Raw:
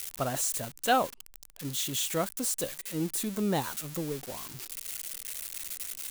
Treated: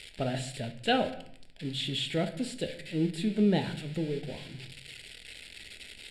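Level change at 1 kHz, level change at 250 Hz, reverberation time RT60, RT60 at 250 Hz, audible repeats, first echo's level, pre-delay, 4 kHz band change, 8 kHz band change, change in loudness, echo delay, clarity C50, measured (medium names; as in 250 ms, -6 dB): -5.0 dB, +4.0 dB, 0.65 s, 0.90 s, no echo, no echo, 5 ms, +2.0 dB, -15.5 dB, 0.0 dB, no echo, 12.0 dB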